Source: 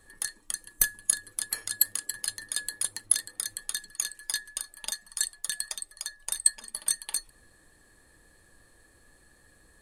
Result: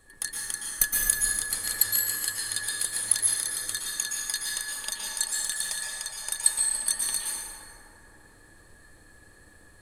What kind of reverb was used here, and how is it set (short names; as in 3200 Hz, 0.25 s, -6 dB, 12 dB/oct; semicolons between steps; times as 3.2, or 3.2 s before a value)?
plate-style reverb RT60 3.2 s, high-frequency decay 0.35×, pre-delay 0.105 s, DRR -4.5 dB